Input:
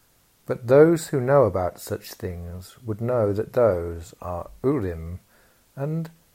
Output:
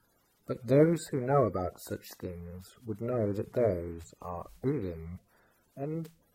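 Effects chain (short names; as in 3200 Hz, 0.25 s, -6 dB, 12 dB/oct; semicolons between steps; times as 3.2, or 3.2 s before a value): bin magnitudes rounded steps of 30 dB; gain -8 dB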